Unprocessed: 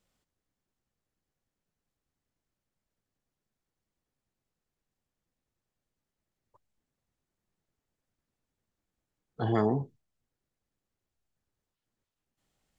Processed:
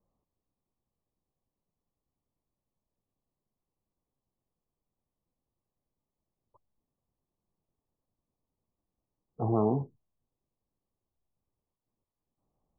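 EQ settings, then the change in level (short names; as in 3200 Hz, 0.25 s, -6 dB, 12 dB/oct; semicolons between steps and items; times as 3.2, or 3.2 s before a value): steep low-pass 1200 Hz 96 dB/oct; 0.0 dB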